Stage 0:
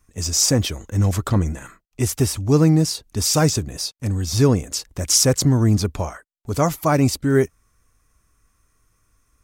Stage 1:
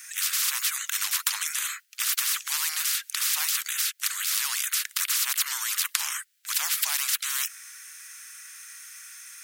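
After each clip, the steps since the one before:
Butterworth high-pass 1,500 Hz 48 dB per octave
every bin compressed towards the loudest bin 10 to 1
level +1.5 dB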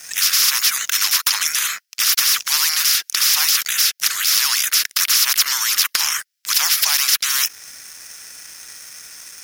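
dynamic equaliser 8,200 Hz, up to −8 dB, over −46 dBFS, Q 4.6
leveller curve on the samples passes 3
parametric band 5,300 Hz +8 dB 0.39 octaves
level −1.5 dB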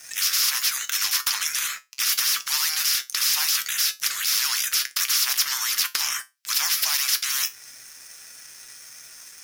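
tuned comb filter 130 Hz, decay 0.21 s, harmonics all, mix 70%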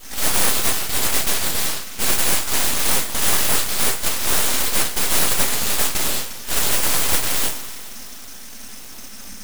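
noise in a band 94–150 Hz −44 dBFS
coupled-rooms reverb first 0.32 s, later 2.7 s, from −18 dB, DRR −7 dB
full-wave rectification

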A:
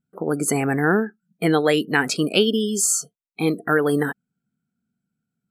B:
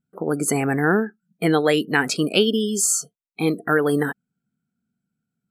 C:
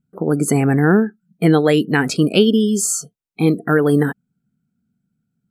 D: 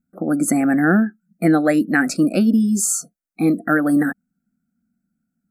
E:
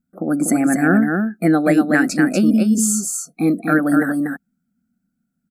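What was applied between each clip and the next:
no processing that can be heard
low-shelf EQ 320 Hz +11.5 dB
phaser with its sweep stopped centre 640 Hz, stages 8; level +1.5 dB
single-tap delay 242 ms −4.5 dB

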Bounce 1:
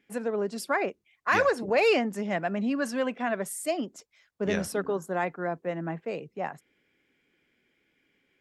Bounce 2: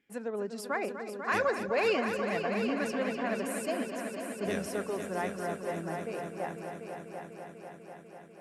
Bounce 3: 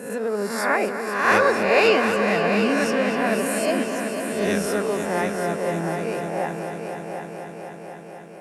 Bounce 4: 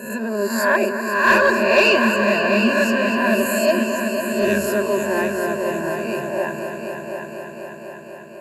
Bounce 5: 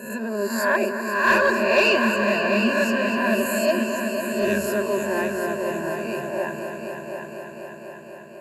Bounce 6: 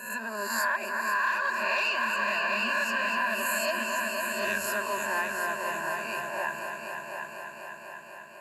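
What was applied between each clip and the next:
echo machine with several playback heads 247 ms, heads all three, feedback 67%, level −11 dB; level −6 dB
peak hold with a rise ahead of every peak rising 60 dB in 0.81 s; on a send at −12.5 dB: convolution reverb RT60 1.8 s, pre-delay 3 ms; on the sum: level +8 dB
EQ curve with evenly spaced ripples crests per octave 1.4, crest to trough 18 dB; soft clipping −4.5 dBFS, distortion −23 dB
feedback echo with a swinging delay time 278 ms, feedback 68%, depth 125 cents, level −23 dB; level −3.5 dB
low shelf with overshoot 660 Hz −13 dB, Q 1.5; downward compressor 16 to 1, threshold −24 dBFS, peak gain reduction 13.5 dB

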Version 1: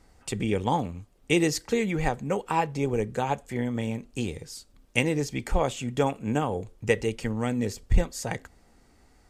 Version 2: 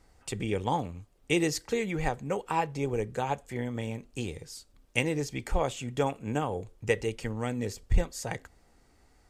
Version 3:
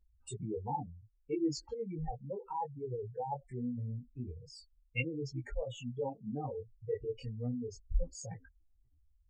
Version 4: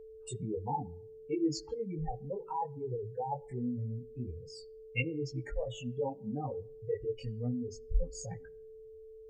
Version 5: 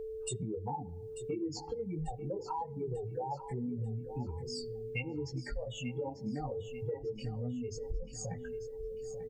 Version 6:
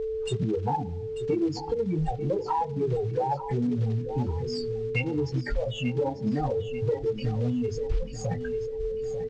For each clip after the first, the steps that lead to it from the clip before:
parametric band 220 Hz −4 dB 0.59 octaves; level −3 dB
expanding power law on the bin magnitudes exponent 3.8; multi-voice chorus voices 4, 0.35 Hz, delay 20 ms, depth 5 ms; level −4 dB
steady tone 440 Hz −50 dBFS; on a send at −22 dB: convolution reverb RT60 0.60 s, pre-delay 5 ms; on the sum: level +2 dB
downward compressor 6 to 1, threshold −45 dBFS, peak gain reduction 20.5 dB; on a send: repeating echo 892 ms, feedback 41%, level −12 dB; on the sum: level +9.5 dB
one scale factor per block 5 bits; in parallel at −8 dB: asymmetric clip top −35 dBFS; on the sum: Gaussian smoothing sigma 1.7 samples; level +8 dB

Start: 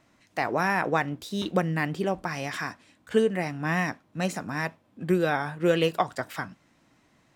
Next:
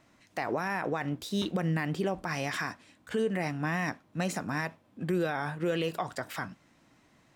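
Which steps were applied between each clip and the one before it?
brickwall limiter −20.5 dBFS, peak gain reduction 11 dB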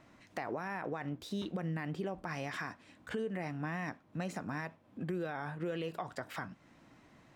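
high-shelf EQ 3,900 Hz −8.5 dB
downward compressor 2 to 1, threshold −46 dBFS, peak gain reduction 11.5 dB
level +3 dB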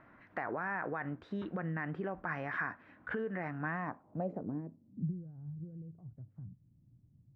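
low-pass filter sweep 1,600 Hz → 120 Hz, 0:03.69–0:05.22
level −1 dB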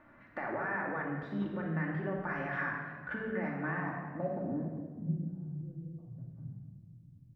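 convolution reverb RT60 1.6 s, pre-delay 3 ms, DRR −2 dB
level −2.5 dB

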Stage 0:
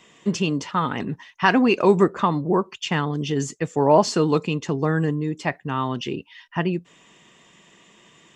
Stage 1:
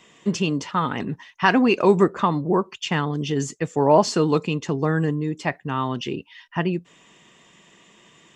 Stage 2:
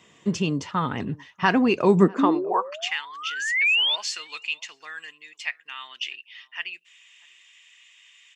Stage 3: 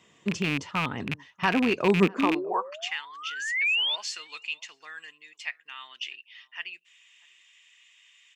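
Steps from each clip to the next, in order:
no processing that can be heard
sound drawn into the spectrogram rise, 0:02.18–0:03.96, 260–3,700 Hz −24 dBFS; slap from a distant wall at 110 metres, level −25 dB; high-pass filter sweep 82 Hz → 2,400 Hz, 0:01.78–0:02.96; level −3 dB
loose part that buzzes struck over −27 dBFS, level −13 dBFS; level −4.5 dB

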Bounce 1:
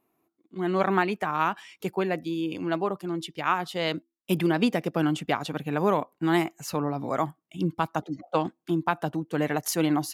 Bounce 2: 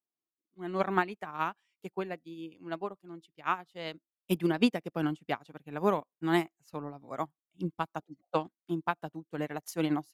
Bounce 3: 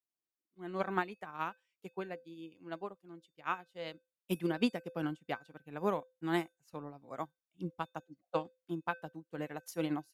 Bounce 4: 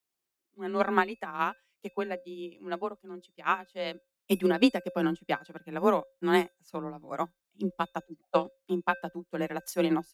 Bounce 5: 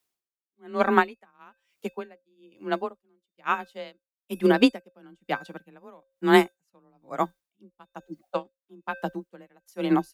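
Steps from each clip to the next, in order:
expander for the loud parts 2.5 to 1, over −38 dBFS
tuned comb filter 510 Hz, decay 0.27 s, harmonics odd, mix 70%; level +4.5 dB
frequency shifter +24 Hz; level +8.5 dB
tremolo with a sine in dB 1.1 Hz, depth 32 dB; level +7.5 dB

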